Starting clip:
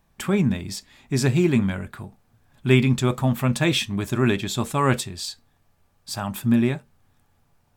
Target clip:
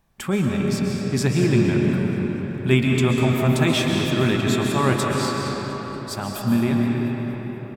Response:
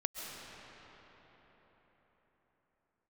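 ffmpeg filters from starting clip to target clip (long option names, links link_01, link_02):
-filter_complex "[0:a]asplit=6[link_01][link_02][link_03][link_04][link_05][link_06];[link_02]adelay=235,afreqshift=35,volume=-17dB[link_07];[link_03]adelay=470,afreqshift=70,volume=-21.9dB[link_08];[link_04]adelay=705,afreqshift=105,volume=-26.8dB[link_09];[link_05]adelay=940,afreqshift=140,volume=-31.6dB[link_10];[link_06]adelay=1175,afreqshift=175,volume=-36.5dB[link_11];[link_01][link_07][link_08][link_09][link_10][link_11]amix=inputs=6:normalize=0[link_12];[1:a]atrim=start_sample=2205[link_13];[link_12][link_13]afir=irnorm=-1:irlink=0"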